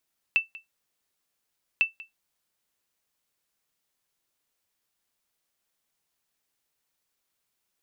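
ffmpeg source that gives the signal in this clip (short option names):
-f lavfi -i "aevalsrc='0.224*(sin(2*PI*2660*mod(t,1.45))*exp(-6.91*mod(t,1.45)/0.15)+0.0944*sin(2*PI*2660*max(mod(t,1.45)-0.19,0))*exp(-6.91*max(mod(t,1.45)-0.19,0)/0.15))':d=2.9:s=44100"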